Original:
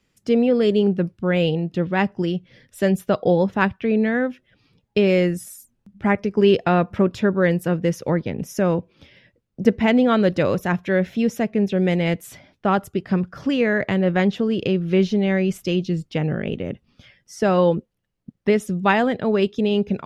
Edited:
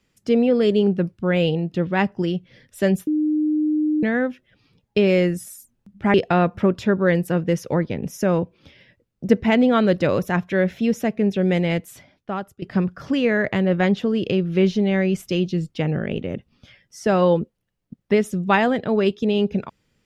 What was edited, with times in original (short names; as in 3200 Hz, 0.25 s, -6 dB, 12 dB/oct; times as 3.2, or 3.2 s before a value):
3.07–4.03 bleep 305 Hz -17 dBFS
6.14–6.5 cut
11.97–12.98 fade out, to -16 dB